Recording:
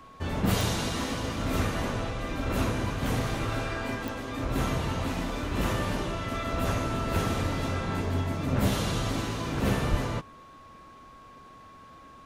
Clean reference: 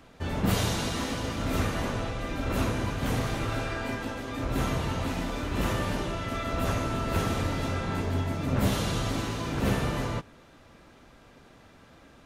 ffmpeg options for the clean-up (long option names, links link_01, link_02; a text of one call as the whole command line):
ffmpeg -i in.wav -filter_complex "[0:a]adeclick=threshold=4,bandreject=frequency=1100:width=30,asplit=3[link_01][link_02][link_03];[link_01]afade=type=out:start_time=9.9:duration=0.02[link_04];[link_02]highpass=frequency=140:width=0.5412,highpass=frequency=140:width=1.3066,afade=type=in:start_time=9.9:duration=0.02,afade=type=out:start_time=10.02:duration=0.02[link_05];[link_03]afade=type=in:start_time=10.02:duration=0.02[link_06];[link_04][link_05][link_06]amix=inputs=3:normalize=0" out.wav